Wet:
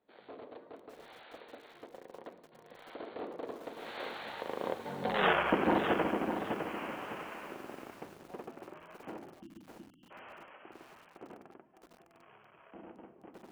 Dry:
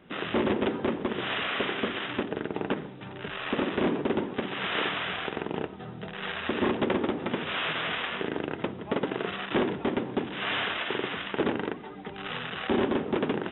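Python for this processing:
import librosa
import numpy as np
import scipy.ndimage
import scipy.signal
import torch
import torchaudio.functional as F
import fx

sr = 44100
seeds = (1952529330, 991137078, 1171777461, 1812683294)

y = fx.doppler_pass(x, sr, speed_mps=56, closest_m=7.4, pass_at_s=5.23)
y = fx.peak_eq(y, sr, hz=690.0, db=12.0, octaves=2.2)
y = fx.spec_erase(y, sr, start_s=9.42, length_s=0.69, low_hz=350.0, high_hz=2700.0)
y = fx.low_shelf(y, sr, hz=71.0, db=2.5)
y = fx.echo_crushed(y, sr, ms=607, feedback_pct=35, bits=9, wet_db=-7)
y = y * librosa.db_to_amplitude(1.5)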